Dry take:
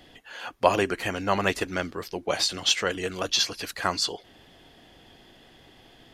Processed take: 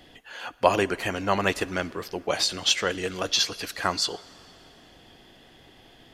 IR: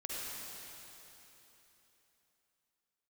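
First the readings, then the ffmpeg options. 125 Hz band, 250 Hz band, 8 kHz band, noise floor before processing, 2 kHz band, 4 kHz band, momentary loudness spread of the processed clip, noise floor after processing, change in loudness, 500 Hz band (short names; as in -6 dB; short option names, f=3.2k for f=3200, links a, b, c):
+0.5 dB, +0.5 dB, +0.5 dB, -55 dBFS, +0.5 dB, +0.5 dB, 10 LU, -54 dBFS, +0.5 dB, +0.5 dB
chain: -filter_complex "[0:a]asplit=2[a][b];[1:a]atrim=start_sample=2205,asetrate=52920,aresample=44100[c];[b][c]afir=irnorm=-1:irlink=0,volume=-19dB[d];[a][d]amix=inputs=2:normalize=0"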